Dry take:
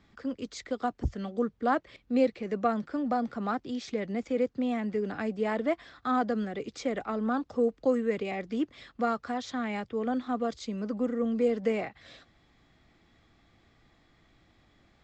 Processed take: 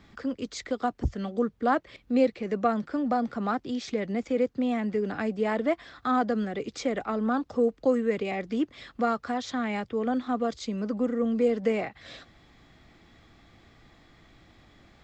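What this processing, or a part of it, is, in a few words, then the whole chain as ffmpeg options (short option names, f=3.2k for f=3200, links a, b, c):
parallel compression: -filter_complex "[0:a]asplit=2[a][b];[b]acompressor=threshold=-46dB:ratio=6,volume=-0.5dB[c];[a][c]amix=inputs=2:normalize=0,volume=1.5dB"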